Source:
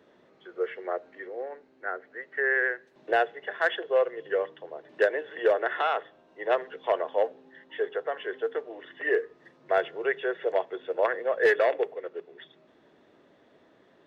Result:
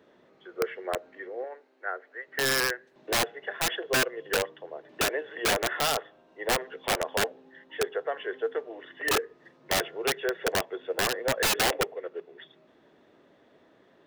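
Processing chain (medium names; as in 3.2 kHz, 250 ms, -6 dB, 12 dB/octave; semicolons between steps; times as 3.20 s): 1.44–2.28 s: high-pass 420 Hz 12 dB/octave; integer overflow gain 19 dB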